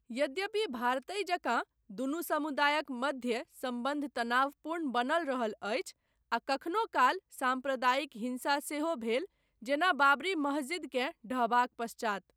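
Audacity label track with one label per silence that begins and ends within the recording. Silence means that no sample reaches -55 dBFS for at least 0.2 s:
1.640000	1.900000	silence
5.920000	6.320000	silence
9.260000	9.620000	silence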